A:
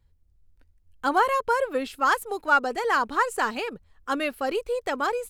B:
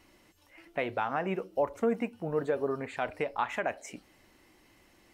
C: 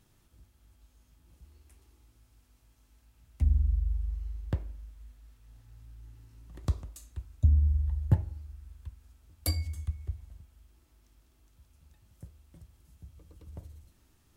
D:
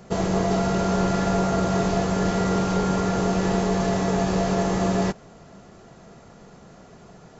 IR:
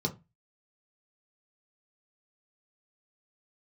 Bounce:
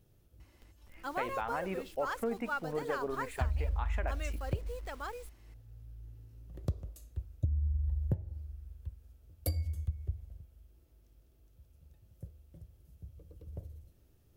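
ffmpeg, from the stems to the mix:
-filter_complex "[0:a]asubboost=boost=9.5:cutoff=80,acrusher=bits=6:mix=0:aa=0.000001,volume=-15dB[a];[1:a]adelay=400,volume=-5.5dB[b];[2:a]equalizer=f=125:t=o:w=1:g=3,equalizer=f=250:t=o:w=1:g=-5,equalizer=f=500:t=o:w=1:g=7,equalizer=f=1k:t=o:w=1:g=-10,equalizer=f=2k:t=o:w=1:g=-6,equalizer=f=4k:t=o:w=1:g=-5,equalizer=f=8k:t=o:w=1:g=-9,volume=0dB[c];[a][b][c]amix=inputs=3:normalize=0,acompressor=threshold=-28dB:ratio=10"

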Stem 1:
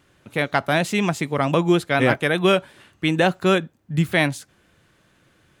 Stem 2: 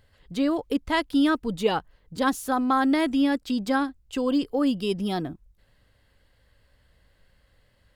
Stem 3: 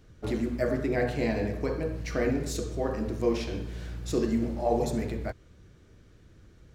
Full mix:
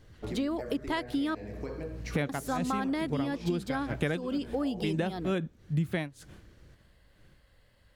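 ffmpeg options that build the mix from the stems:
-filter_complex "[0:a]agate=range=-33dB:threshold=-49dB:ratio=3:detection=peak,lowshelf=f=410:g=10.5,tremolo=f=2.2:d=0.96,adelay=1800,volume=2.5dB[a];[1:a]volume=-0.5dB,asplit=3[b][c][d];[b]atrim=end=1.35,asetpts=PTS-STARTPTS,afade=t=out:st=1.346:d=0.004:c=hsin[e];[c]atrim=start=1.35:end=2.29,asetpts=PTS-STARTPTS,volume=0[f];[d]atrim=start=2.29,asetpts=PTS-STARTPTS,afade=t=in:d=0.004:c=hsin[g];[e][f][g]concat=n=3:v=0:a=1,asplit=2[h][i];[2:a]acompressor=threshold=-33dB:ratio=5,volume=-1.5dB[j];[i]apad=whole_len=326368[k];[a][k]sidechaincompress=threshold=-30dB:ratio=8:attack=28:release=295[l];[l][h][j]amix=inputs=3:normalize=0,acompressor=threshold=-28dB:ratio=6"

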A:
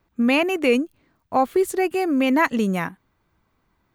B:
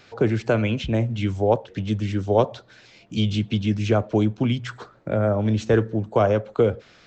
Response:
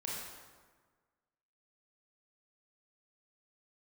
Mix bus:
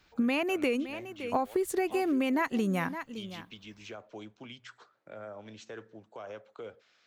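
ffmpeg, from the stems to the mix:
-filter_complex "[0:a]volume=-1.5dB,asplit=3[a][b][c];[b]volume=-18.5dB[d];[1:a]highpass=f=1.1k:p=1,alimiter=limit=-21dB:level=0:latency=1:release=60,volume=-13dB[e];[c]apad=whole_len=311615[f];[e][f]sidechaincompress=threshold=-23dB:ratio=8:attack=16:release=128[g];[d]aecho=0:1:564:1[h];[a][g][h]amix=inputs=3:normalize=0,acompressor=threshold=-25dB:ratio=10"

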